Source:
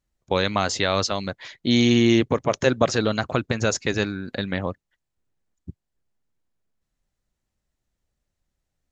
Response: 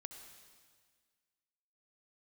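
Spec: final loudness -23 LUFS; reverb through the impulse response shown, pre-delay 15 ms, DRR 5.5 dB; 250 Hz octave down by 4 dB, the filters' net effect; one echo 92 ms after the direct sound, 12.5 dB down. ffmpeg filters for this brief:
-filter_complex "[0:a]equalizer=f=250:t=o:g=-5,aecho=1:1:92:0.237,asplit=2[a][b];[1:a]atrim=start_sample=2205,adelay=15[c];[b][c]afir=irnorm=-1:irlink=0,volume=-1dB[d];[a][d]amix=inputs=2:normalize=0"

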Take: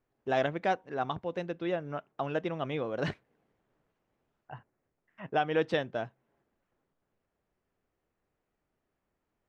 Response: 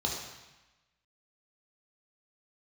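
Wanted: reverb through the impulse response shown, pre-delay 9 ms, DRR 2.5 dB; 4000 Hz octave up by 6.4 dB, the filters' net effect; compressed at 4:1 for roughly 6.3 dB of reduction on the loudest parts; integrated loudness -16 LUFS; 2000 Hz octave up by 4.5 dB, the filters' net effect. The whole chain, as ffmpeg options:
-filter_complex "[0:a]equalizer=f=2k:t=o:g=4.5,equalizer=f=4k:t=o:g=6.5,acompressor=threshold=-29dB:ratio=4,asplit=2[a][b];[1:a]atrim=start_sample=2205,adelay=9[c];[b][c]afir=irnorm=-1:irlink=0,volume=-9dB[d];[a][d]amix=inputs=2:normalize=0,volume=16.5dB"

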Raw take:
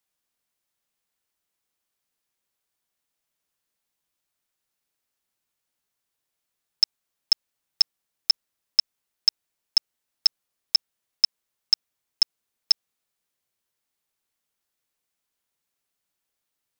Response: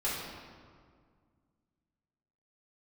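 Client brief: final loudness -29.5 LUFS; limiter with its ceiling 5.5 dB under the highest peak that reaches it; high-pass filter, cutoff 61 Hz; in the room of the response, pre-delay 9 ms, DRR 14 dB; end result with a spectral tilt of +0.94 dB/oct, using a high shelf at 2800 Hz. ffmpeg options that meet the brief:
-filter_complex "[0:a]highpass=61,highshelf=f=2.8k:g=6,alimiter=limit=-9dB:level=0:latency=1,asplit=2[a][b];[1:a]atrim=start_sample=2205,adelay=9[c];[b][c]afir=irnorm=-1:irlink=0,volume=-21dB[d];[a][d]amix=inputs=2:normalize=0,volume=-5dB"

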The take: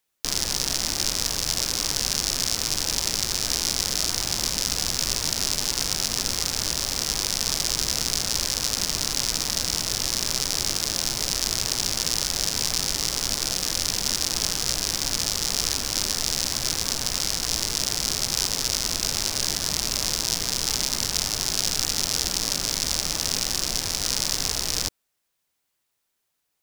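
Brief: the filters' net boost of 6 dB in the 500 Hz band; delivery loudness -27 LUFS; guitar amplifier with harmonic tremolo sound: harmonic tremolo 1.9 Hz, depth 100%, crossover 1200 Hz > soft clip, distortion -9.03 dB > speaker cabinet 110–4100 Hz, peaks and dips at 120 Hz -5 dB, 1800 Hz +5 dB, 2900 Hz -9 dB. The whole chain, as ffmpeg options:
-filter_complex "[0:a]equalizer=f=500:t=o:g=7.5,acrossover=split=1200[a][b];[a]aeval=exprs='val(0)*(1-1/2+1/2*cos(2*PI*1.9*n/s))':c=same[c];[b]aeval=exprs='val(0)*(1-1/2-1/2*cos(2*PI*1.9*n/s))':c=same[d];[c][d]amix=inputs=2:normalize=0,asoftclip=threshold=-16dB,highpass=110,equalizer=f=120:t=q:w=4:g=-5,equalizer=f=1.8k:t=q:w=4:g=5,equalizer=f=2.9k:t=q:w=4:g=-9,lowpass=f=4.1k:w=0.5412,lowpass=f=4.1k:w=1.3066,volume=10dB"

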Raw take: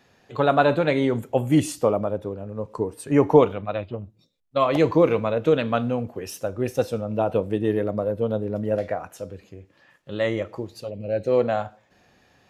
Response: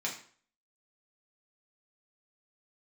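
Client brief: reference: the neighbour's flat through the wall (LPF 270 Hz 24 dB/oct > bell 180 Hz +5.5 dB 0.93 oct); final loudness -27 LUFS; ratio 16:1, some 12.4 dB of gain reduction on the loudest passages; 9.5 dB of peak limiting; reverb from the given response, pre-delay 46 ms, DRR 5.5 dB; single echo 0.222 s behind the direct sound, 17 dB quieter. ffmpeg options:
-filter_complex "[0:a]acompressor=threshold=-21dB:ratio=16,alimiter=limit=-20dB:level=0:latency=1,aecho=1:1:222:0.141,asplit=2[a][b];[1:a]atrim=start_sample=2205,adelay=46[c];[b][c]afir=irnorm=-1:irlink=0,volume=-10dB[d];[a][d]amix=inputs=2:normalize=0,lowpass=f=270:w=0.5412,lowpass=f=270:w=1.3066,equalizer=f=180:t=o:w=0.93:g=5.5,volume=6.5dB"

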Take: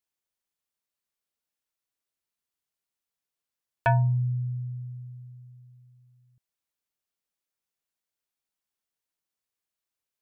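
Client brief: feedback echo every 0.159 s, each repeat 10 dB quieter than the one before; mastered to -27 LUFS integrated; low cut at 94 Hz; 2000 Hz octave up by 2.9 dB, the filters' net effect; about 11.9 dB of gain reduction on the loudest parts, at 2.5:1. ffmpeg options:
-af "highpass=94,equalizer=f=2k:t=o:g=4,acompressor=threshold=-36dB:ratio=2.5,aecho=1:1:159|318|477|636:0.316|0.101|0.0324|0.0104,volume=11dB"

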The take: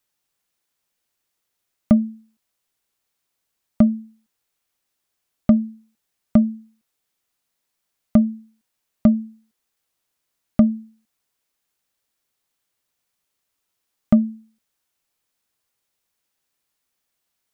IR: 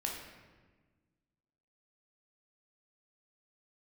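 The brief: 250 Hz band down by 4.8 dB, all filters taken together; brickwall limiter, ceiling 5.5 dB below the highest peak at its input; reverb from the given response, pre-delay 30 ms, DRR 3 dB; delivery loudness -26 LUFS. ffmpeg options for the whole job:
-filter_complex "[0:a]equalizer=f=250:t=o:g=-5.5,alimiter=limit=-12.5dB:level=0:latency=1,asplit=2[a][b];[1:a]atrim=start_sample=2205,adelay=30[c];[b][c]afir=irnorm=-1:irlink=0,volume=-5.5dB[d];[a][d]amix=inputs=2:normalize=0,volume=3.5dB"

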